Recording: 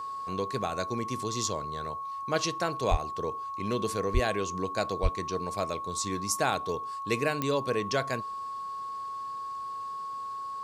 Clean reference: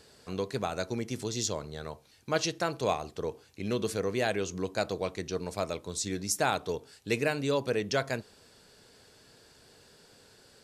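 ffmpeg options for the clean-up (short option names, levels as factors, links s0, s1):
-filter_complex "[0:a]adeclick=t=4,bandreject=f=1100:w=30,asplit=3[s0][s1][s2];[s0]afade=t=out:st=2.9:d=0.02[s3];[s1]highpass=f=140:w=0.5412,highpass=f=140:w=1.3066,afade=t=in:st=2.9:d=0.02,afade=t=out:st=3.02:d=0.02[s4];[s2]afade=t=in:st=3.02:d=0.02[s5];[s3][s4][s5]amix=inputs=3:normalize=0,asplit=3[s6][s7][s8];[s6]afade=t=out:st=4.13:d=0.02[s9];[s7]highpass=f=140:w=0.5412,highpass=f=140:w=1.3066,afade=t=in:st=4.13:d=0.02,afade=t=out:st=4.25:d=0.02[s10];[s8]afade=t=in:st=4.25:d=0.02[s11];[s9][s10][s11]amix=inputs=3:normalize=0,asplit=3[s12][s13][s14];[s12]afade=t=out:st=5.02:d=0.02[s15];[s13]highpass=f=140:w=0.5412,highpass=f=140:w=1.3066,afade=t=in:st=5.02:d=0.02,afade=t=out:st=5.14:d=0.02[s16];[s14]afade=t=in:st=5.14:d=0.02[s17];[s15][s16][s17]amix=inputs=3:normalize=0"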